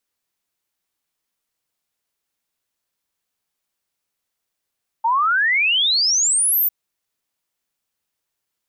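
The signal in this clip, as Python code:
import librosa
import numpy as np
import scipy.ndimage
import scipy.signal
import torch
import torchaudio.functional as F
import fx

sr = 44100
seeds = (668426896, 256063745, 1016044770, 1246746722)

y = fx.ess(sr, length_s=1.65, from_hz=880.0, to_hz=15000.0, level_db=-14.5)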